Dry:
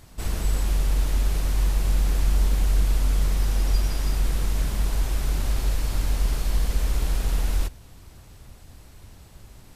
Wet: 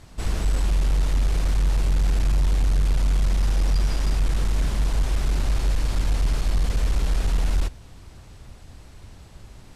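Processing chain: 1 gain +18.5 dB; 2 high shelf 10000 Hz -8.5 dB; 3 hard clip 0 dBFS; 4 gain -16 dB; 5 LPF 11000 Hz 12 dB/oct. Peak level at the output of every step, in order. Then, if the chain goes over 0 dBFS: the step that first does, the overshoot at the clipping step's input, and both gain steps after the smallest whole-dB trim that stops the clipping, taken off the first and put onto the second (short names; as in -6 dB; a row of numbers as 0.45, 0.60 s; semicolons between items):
+9.0, +9.0, 0.0, -16.0, -16.0 dBFS; step 1, 9.0 dB; step 1 +9.5 dB, step 4 -7 dB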